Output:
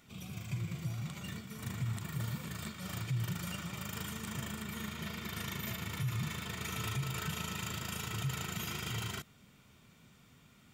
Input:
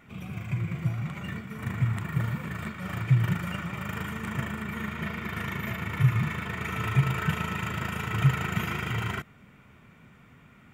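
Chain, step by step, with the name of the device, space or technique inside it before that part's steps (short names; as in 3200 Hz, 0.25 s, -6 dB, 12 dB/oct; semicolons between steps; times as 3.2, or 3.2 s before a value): over-bright horn tweeter (resonant high shelf 3000 Hz +12 dB, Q 1.5; limiter -20 dBFS, peak gain reduction 10 dB); gain -7.5 dB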